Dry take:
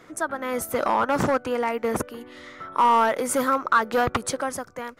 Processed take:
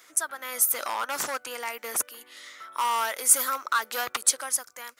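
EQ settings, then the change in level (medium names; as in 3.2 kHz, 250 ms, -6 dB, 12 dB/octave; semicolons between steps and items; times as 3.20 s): differentiator; peaking EQ 200 Hz -2.5 dB 0.76 oct; +9.0 dB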